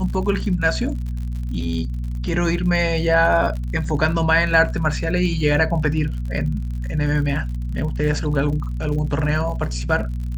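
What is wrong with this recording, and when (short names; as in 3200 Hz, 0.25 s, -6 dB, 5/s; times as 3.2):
crackle 62/s -30 dBFS
hum 60 Hz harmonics 4 -25 dBFS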